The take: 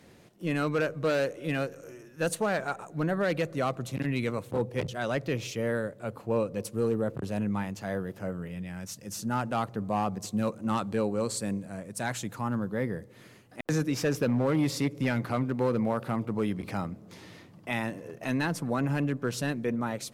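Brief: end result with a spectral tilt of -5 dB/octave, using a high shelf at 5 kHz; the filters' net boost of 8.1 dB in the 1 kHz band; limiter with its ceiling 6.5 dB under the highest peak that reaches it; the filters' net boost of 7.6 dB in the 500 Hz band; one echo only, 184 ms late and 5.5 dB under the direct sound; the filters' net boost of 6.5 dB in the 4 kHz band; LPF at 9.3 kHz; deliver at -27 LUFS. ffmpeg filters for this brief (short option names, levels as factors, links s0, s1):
-af "lowpass=9300,equalizer=f=500:t=o:g=6.5,equalizer=f=1000:t=o:g=8,equalizer=f=4000:t=o:g=3.5,highshelf=f=5000:g=9,alimiter=limit=0.168:level=0:latency=1,aecho=1:1:184:0.531,volume=0.944"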